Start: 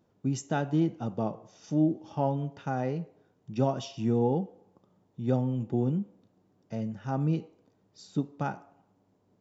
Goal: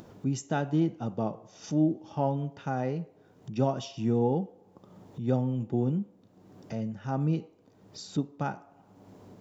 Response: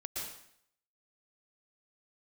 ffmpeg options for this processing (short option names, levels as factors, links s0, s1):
-af "acompressor=mode=upward:threshold=0.0178:ratio=2.5"